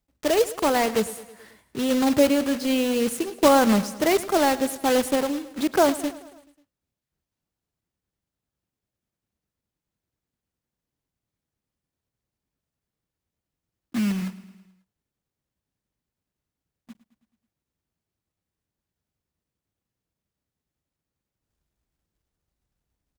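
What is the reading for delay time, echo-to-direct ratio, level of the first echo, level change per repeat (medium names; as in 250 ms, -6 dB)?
108 ms, -15.5 dB, -17.5 dB, -4.5 dB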